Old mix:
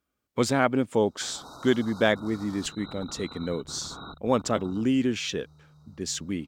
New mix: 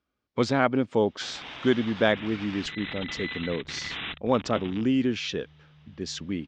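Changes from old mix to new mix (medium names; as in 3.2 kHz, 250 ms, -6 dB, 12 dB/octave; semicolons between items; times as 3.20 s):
first sound: remove brick-wall FIR band-stop 1.5–3.7 kHz; master: add low-pass 5.4 kHz 24 dB/octave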